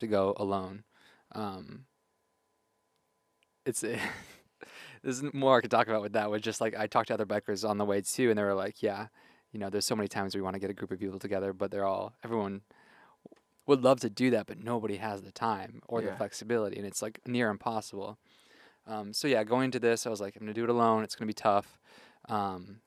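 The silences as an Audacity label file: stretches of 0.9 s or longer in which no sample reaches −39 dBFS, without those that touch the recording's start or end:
1.760000	3.660000	silence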